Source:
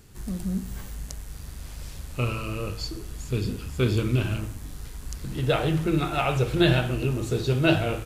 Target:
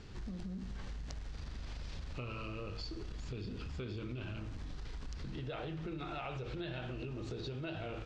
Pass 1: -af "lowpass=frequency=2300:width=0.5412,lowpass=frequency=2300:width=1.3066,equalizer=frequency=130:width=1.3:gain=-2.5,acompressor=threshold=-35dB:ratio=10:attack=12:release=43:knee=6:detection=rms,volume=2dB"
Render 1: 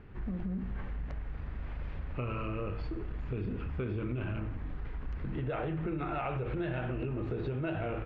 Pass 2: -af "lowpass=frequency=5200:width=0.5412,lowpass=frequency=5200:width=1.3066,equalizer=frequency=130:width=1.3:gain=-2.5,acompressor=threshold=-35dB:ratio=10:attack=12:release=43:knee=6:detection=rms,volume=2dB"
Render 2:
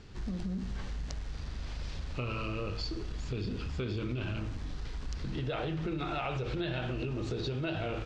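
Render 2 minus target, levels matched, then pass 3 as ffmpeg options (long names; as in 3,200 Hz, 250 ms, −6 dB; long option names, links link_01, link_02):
downward compressor: peak gain reduction −7 dB
-af "lowpass=frequency=5200:width=0.5412,lowpass=frequency=5200:width=1.3066,equalizer=frequency=130:width=1.3:gain=-2.5,acompressor=threshold=-43dB:ratio=10:attack=12:release=43:knee=6:detection=rms,volume=2dB"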